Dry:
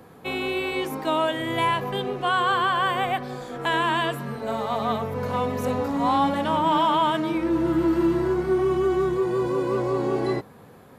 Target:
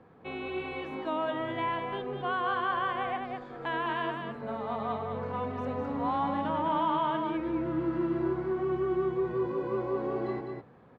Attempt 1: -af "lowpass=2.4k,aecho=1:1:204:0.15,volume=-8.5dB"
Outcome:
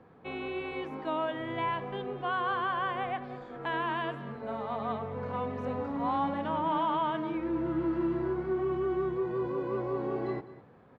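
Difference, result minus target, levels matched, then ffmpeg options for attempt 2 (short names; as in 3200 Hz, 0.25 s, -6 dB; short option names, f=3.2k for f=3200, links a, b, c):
echo-to-direct -11 dB
-af "lowpass=2.4k,aecho=1:1:204:0.531,volume=-8.5dB"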